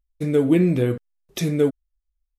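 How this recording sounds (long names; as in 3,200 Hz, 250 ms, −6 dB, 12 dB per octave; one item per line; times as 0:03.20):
background noise floor −80 dBFS
spectral slope −8.5 dB per octave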